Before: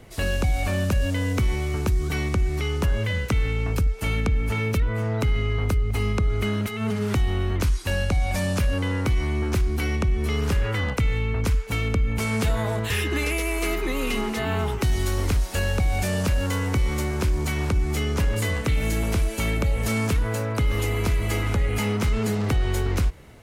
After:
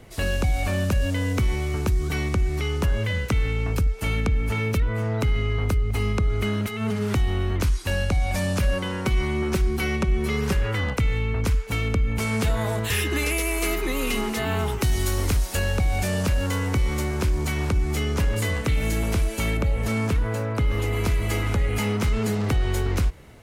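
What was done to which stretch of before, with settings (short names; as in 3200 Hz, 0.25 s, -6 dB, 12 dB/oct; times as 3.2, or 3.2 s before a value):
8.62–10.55 comb 5.3 ms, depth 61%
12.61–15.57 high shelf 6100 Hz +6.5 dB
19.57–20.93 high shelf 3500 Hz -7 dB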